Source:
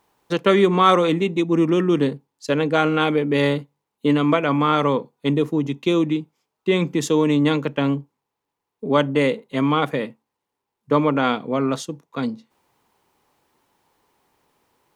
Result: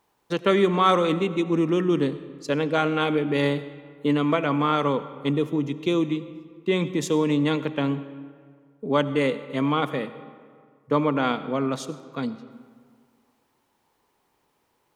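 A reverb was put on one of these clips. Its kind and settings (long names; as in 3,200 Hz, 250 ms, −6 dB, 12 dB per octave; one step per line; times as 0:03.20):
comb and all-pass reverb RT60 1.9 s, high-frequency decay 0.6×, pre-delay 45 ms, DRR 13.5 dB
level −4 dB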